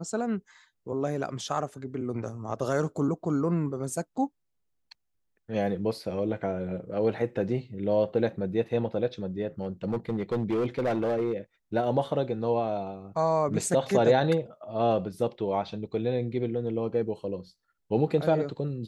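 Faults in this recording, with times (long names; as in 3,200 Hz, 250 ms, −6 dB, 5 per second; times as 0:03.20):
0:09.61–0:11.34: clipping −23 dBFS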